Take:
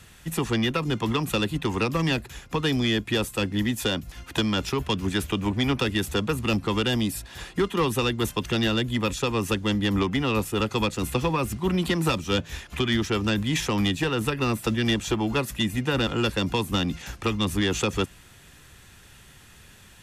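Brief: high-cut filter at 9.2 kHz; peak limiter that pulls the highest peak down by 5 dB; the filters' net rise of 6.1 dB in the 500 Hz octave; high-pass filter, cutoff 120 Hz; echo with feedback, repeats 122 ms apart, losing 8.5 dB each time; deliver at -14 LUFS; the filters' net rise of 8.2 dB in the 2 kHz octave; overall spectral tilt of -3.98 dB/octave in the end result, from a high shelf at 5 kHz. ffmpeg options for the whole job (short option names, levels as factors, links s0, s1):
-af "highpass=120,lowpass=9200,equalizer=f=500:t=o:g=7,equalizer=f=2000:t=o:g=9,highshelf=f=5000:g=7.5,alimiter=limit=0.282:level=0:latency=1,aecho=1:1:122|244|366|488:0.376|0.143|0.0543|0.0206,volume=2.51"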